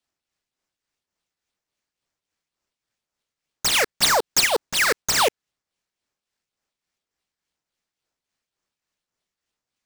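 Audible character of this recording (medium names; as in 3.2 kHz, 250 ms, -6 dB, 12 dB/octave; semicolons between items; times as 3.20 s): phasing stages 6, 2 Hz, lowest notch 790–3000 Hz; aliases and images of a low sample rate 13 kHz, jitter 0%; tremolo triangle 3.5 Hz, depth 55%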